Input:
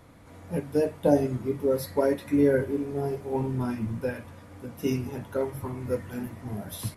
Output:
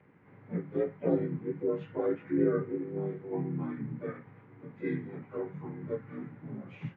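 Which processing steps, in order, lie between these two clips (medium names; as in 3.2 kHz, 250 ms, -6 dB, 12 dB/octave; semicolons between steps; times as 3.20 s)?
frequency axis rescaled in octaves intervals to 86%; harmony voices +4 st -5 dB; cabinet simulation 100–2400 Hz, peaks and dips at 170 Hz +8 dB, 410 Hz +3 dB, 650 Hz -7 dB, 2.1 kHz +10 dB; trim -7.5 dB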